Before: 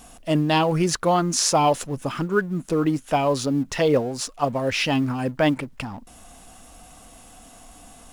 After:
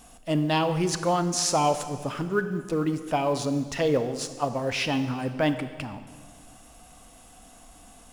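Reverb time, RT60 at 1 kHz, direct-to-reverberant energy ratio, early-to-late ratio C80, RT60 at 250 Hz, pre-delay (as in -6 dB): 1.7 s, 1.6 s, 10.0 dB, 12.0 dB, 1.9 s, 27 ms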